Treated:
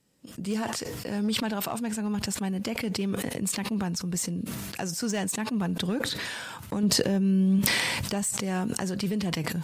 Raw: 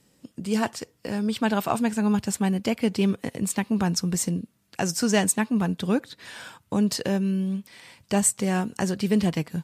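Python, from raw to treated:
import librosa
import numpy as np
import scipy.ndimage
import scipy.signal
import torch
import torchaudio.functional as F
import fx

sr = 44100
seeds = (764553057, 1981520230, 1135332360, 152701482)

y = fx.recorder_agc(x, sr, target_db=-12.0, rise_db_per_s=16.0, max_gain_db=30)
y = np.clip(y, -10.0 ** (-13.5 / 20.0), 10.0 ** (-13.5 / 20.0))
y = fx.low_shelf(y, sr, hz=500.0, db=5.5, at=(6.83, 7.59))
y = fx.sustainer(y, sr, db_per_s=22.0)
y = y * 10.0 ** (-9.0 / 20.0)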